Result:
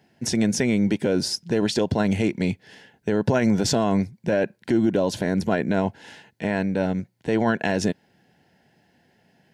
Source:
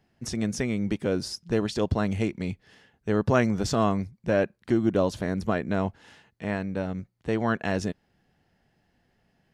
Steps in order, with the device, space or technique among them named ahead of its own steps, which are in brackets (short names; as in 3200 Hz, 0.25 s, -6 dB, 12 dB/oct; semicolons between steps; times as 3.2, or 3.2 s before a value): PA system with an anti-feedback notch (HPF 130 Hz 12 dB/oct; Butterworth band-stop 1200 Hz, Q 4.2; limiter -19.5 dBFS, peak gain reduction 10 dB); gain +8.5 dB